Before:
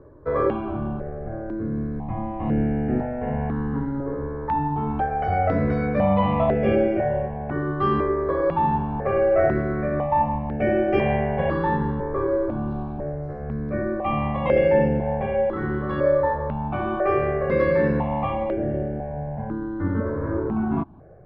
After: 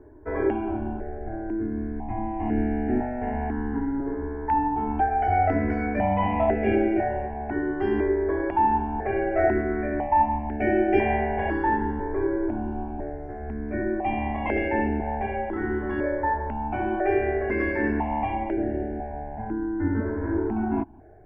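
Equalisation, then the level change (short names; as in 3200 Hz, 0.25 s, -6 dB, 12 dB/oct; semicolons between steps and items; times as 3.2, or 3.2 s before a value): fixed phaser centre 790 Hz, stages 8; +2.0 dB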